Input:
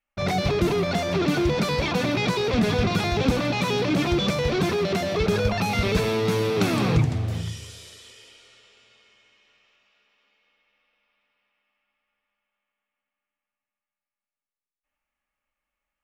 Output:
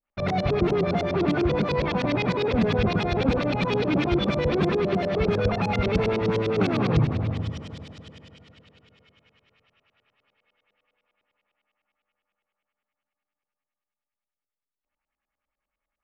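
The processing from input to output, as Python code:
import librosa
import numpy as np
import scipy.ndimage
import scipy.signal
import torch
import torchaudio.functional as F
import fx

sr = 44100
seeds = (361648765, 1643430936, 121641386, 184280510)

y = fx.echo_heads(x, sr, ms=85, heads='first and third', feedback_pct=67, wet_db=-14)
y = fx.filter_lfo_lowpass(y, sr, shape='saw_up', hz=9.9, low_hz=390.0, high_hz=5100.0, q=1.1)
y = y * librosa.db_to_amplitude(-1.0)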